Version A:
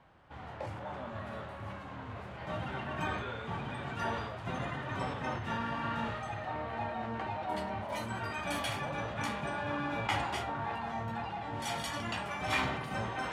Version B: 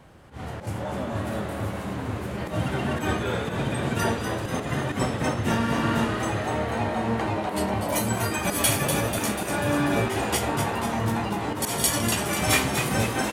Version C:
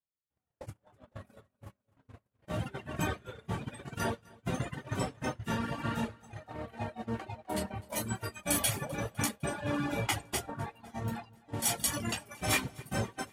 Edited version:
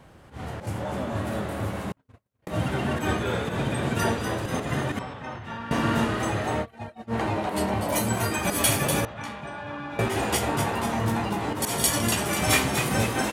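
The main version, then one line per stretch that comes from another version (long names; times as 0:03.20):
B
0:01.92–0:02.47: punch in from C
0:04.99–0:05.71: punch in from A
0:06.63–0:07.12: punch in from C, crossfade 0.06 s
0:09.05–0:09.99: punch in from A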